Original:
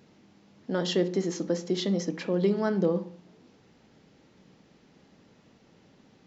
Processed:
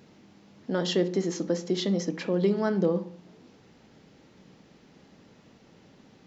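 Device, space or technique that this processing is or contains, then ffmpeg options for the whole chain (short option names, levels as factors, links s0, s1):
parallel compression: -filter_complex "[0:a]asplit=2[s0][s1];[s1]acompressor=threshold=0.01:ratio=6,volume=0.447[s2];[s0][s2]amix=inputs=2:normalize=0"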